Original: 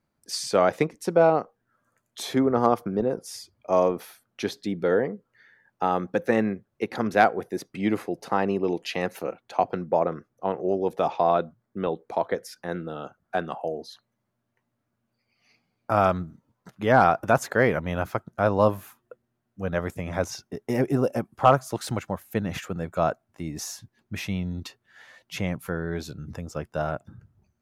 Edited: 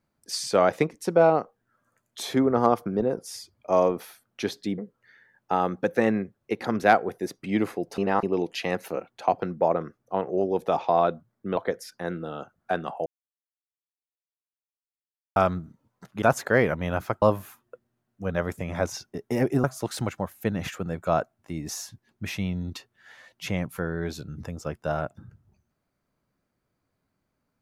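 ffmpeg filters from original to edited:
-filter_complex "[0:a]asplit=10[a][b][c][d][e][f][g][h][i][j];[a]atrim=end=4.782[k];[b]atrim=start=5.088:end=8.292[l];[c]atrim=start=8.288:end=8.542,asetpts=PTS-STARTPTS,areverse[m];[d]atrim=start=8.538:end=11.882[n];[e]atrim=start=12.208:end=13.7,asetpts=PTS-STARTPTS,afade=t=out:st=1.488:d=0.004:c=hsin[o];[f]atrim=start=13.7:end=16,asetpts=PTS-STARTPTS,volume=0[p];[g]atrim=start=16:end=16.862,asetpts=PTS-STARTPTS,afade=t=in:d=0.004:c=hsin[q];[h]atrim=start=17.268:end=18.272[r];[i]atrim=start=18.598:end=21.022[s];[j]atrim=start=21.538[t];[k][l]acrossfade=d=0.004:c1=hsin:c2=hsin[u];[u][m]acrossfade=d=0.004:c1=hsin:c2=hsin[v];[v][n]acrossfade=d=0.004:c1=hsin:c2=hsin[w];[o][p][q]concat=n=3:v=0:a=1[x];[w][x]acrossfade=d=0.004:c1=hsin:c2=hsin[y];[y][r]acrossfade=d=0.004:c1=hsin:c2=hsin[z];[z][s]acrossfade=d=0.004:c1=hsin:c2=hsin[aa];[aa][t]acrossfade=d=0.004:c1=hsin:c2=hsin"

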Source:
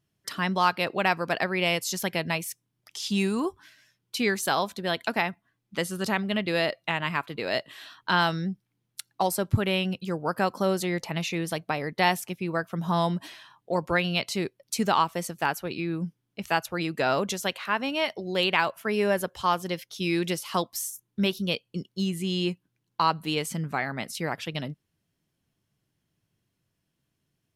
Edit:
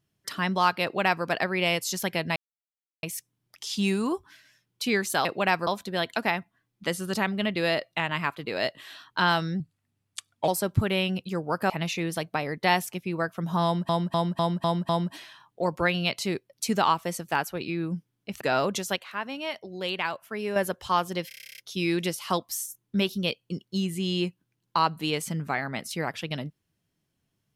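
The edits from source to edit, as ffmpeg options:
-filter_complex "[0:a]asplit=25[a][b][c][d][e][f][g][h][i][j][k][l][m][n][o][p][q][r][s][t][u][v][w][x][y];[a]atrim=end=2.36,asetpts=PTS-STARTPTS,afade=t=out:st=2.356:d=0.004:c=hsin,apad=pad_dur=0.67[z];[b]atrim=start=2.36:end=4.582,asetpts=PTS-STARTPTS,afade=t=in:d=0.004:c=hsin[aa];[c]atrim=start=0.828:end=1.252[ab];[d]atrim=start=4.578:end=8.514[ac];[e]atrim=start=8.51:end=9.24,asetpts=PTS-STARTPTS,asetrate=36603,aresample=44100[ad];[f]atrim=start=9.236:end=10.462[ae];[g]atrim=start=11.048:end=13.242[af];[h]atrim=start=12.988:end=13.242[ag];[i]atrim=start=12.988:end=13.242[ah];[j]atrim=start=12.988:end=13.242[ai];[k]atrim=start=12.988:end=13.242[aj];[l]atrim=start=12.988:end=16.512[ak];[m]atrim=start=16.948:end=17.502[al];[n]atrim=start=17.498:end=19.102,asetpts=PTS-STARTPTS,volume=-6dB[am];[o]atrim=start=19.098:end=19.852[an];[p]atrim=start=19.818:end=19.852[ao];[q]atrim=start=19.818:end=19.852[ap];[r]atrim=start=19.818:end=19.852[aq];[s]atrim=start=19.818:end=19.852[ar];[t]atrim=start=19.818:end=19.852[as];[u]atrim=start=19.818:end=19.852[at];[v]atrim=start=19.818:end=19.852[au];[w]atrim=start=19.818:end=19.852[av];[x]atrim=start=19.818:end=19.852[aw];[y]atrim=start=19.818[ax];[z][aa]concat=n=2:v=0:a=1[ay];[ay][ab]acrossfade=d=0.004:c1=hsin:c2=hsin[az];[az][ac]acrossfade=d=0.004:c1=hsin:c2=hsin[ba];[ba][ad]acrossfade=d=0.004:c1=hsin:c2=hsin[bb];[bb][ae]acrossfade=d=0.004:c1=hsin:c2=hsin[bc];[bc][af]acrossfade=d=0.004:c1=hsin:c2=hsin[bd];[bd][ag]acrossfade=d=0.004:c1=hsin:c2=hsin[be];[be][ah]acrossfade=d=0.004:c1=hsin:c2=hsin[bf];[bf][ai]acrossfade=d=0.004:c1=hsin:c2=hsin[bg];[bg][aj]acrossfade=d=0.004:c1=hsin:c2=hsin[bh];[bh][ak]acrossfade=d=0.004:c1=hsin:c2=hsin[bi];[bi][al]acrossfade=d=0.004:c1=hsin:c2=hsin[bj];[bj][am]acrossfade=d=0.004:c1=hsin:c2=hsin[bk];[bk][an]acrossfade=d=0.004:c1=hsin:c2=hsin[bl];[bl][ao]acrossfade=d=0.004:c1=hsin:c2=hsin[bm];[bm][ap]acrossfade=d=0.004:c1=hsin:c2=hsin[bn];[bn][aq]acrossfade=d=0.004:c1=hsin:c2=hsin[bo];[bo][ar]acrossfade=d=0.004:c1=hsin:c2=hsin[bp];[bp][as]acrossfade=d=0.004:c1=hsin:c2=hsin[bq];[bq][at]acrossfade=d=0.004:c1=hsin:c2=hsin[br];[br][au]acrossfade=d=0.004:c1=hsin:c2=hsin[bs];[bs][av]acrossfade=d=0.004:c1=hsin:c2=hsin[bt];[bt][aw]acrossfade=d=0.004:c1=hsin:c2=hsin[bu];[bu][ax]acrossfade=d=0.004:c1=hsin:c2=hsin"

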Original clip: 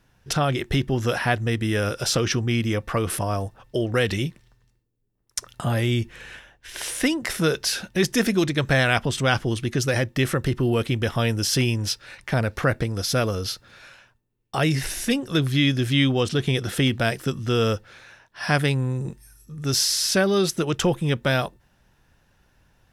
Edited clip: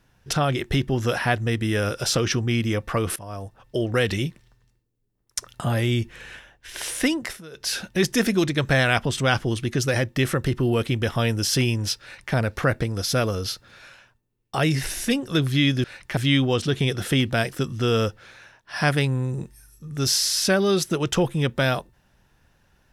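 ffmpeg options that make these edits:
-filter_complex "[0:a]asplit=6[a][b][c][d][e][f];[a]atrim=end=3.16,asetpts=PTS-STARTPTS,afade=t=out:st=3.156:d=0.004:c=hsin:silence=0.125893[g];[b]atrim=start=3.16:end=7.42,asetpts=PTS-STARTPTS,afade=t=in:d=0.66:silence=0.125893,afade=t=out:st=4.02:d=0.24:silence=0.0841395[h];[c]atrim=start=7.42:end=7.51,asetpts=PTS-STARTPTS,volume=-21.5dB[i];[d]atrim=start=7.51:end=15.842,asetpts=PTS-STARTPTS,afade=t=in:d=0.24:silence=0.0841395[j];[e]atrim=start=12.018:end=12.352[k];[f]atrim=start=15.838[l];[g][h][i][j]concat=n=4:v=0:a=1[m];[m][k]acrossfade=d=0.004:c1=hsin:c2=hsin[n];[n][l]acrossfade=d=0.004:c1=hsin:c2=hsin"

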